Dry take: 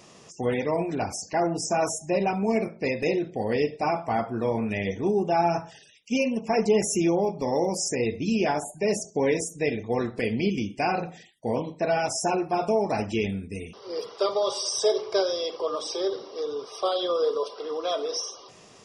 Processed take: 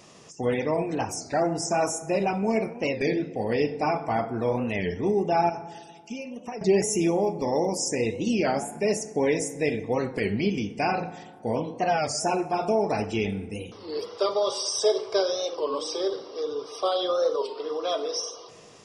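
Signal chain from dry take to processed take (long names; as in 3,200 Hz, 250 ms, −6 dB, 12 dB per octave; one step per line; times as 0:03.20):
0:05.49–0:06.63: downward compressor 6 to 1, threshold −34 dBFS, peak gain reduction 14.5 dB
feedback delay network reverb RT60 1.8 s, low-frequency decay 1.25×, high-frequency decay 0.45×, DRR 13.5 dB
wow of a warped record 33 1/3 rpm, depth 160 cents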